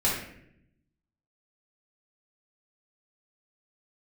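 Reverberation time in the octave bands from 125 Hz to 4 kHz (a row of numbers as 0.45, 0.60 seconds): 1.3, 1.1, 0.85, 0.60, 0.70, 0.50 seconds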